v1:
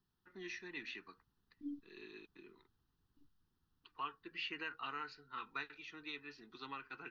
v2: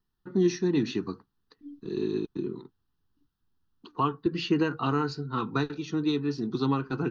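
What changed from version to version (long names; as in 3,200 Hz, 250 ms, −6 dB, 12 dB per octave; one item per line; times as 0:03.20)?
first voice: remove resonant band-pass 2,200 Hz, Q 3.5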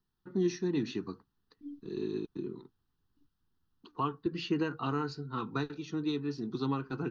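first voice −6.0 dB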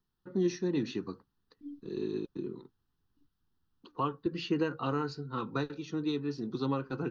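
first voice: add parametric band 540 Hz +12.5 dB 0.21 octaves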